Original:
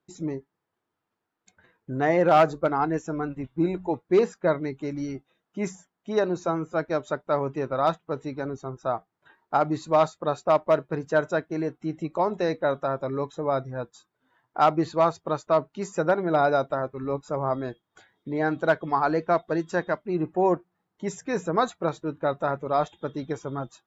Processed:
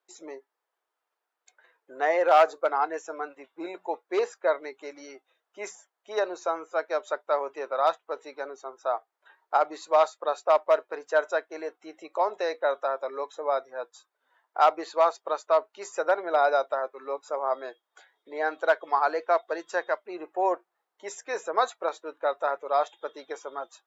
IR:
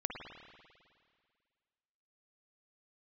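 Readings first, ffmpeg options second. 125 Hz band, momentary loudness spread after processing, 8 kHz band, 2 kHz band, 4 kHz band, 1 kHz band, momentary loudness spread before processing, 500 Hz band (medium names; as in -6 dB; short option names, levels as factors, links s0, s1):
under -35 dB, 16 LU, no reading, 0.0 dB, 0.0 dB, 0.0 dB, 11 LU, -1.5 dB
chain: -af "highpass=f=480:w=0.5412,highpass=f=480:w=1.3066"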